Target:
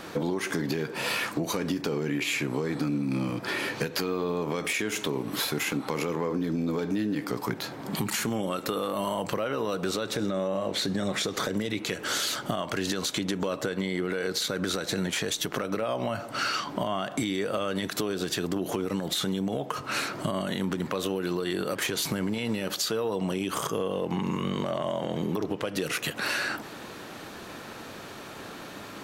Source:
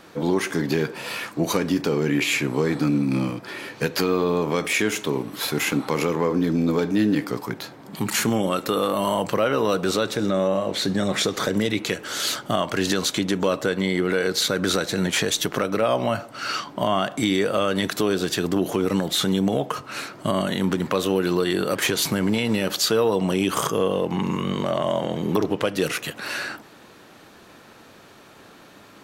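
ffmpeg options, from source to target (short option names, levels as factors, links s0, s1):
-af "alimiter=limit=0.119:level=0:latency=1:release=296,acompressor=threshold=0.0224:ratio=4,volume=2.11"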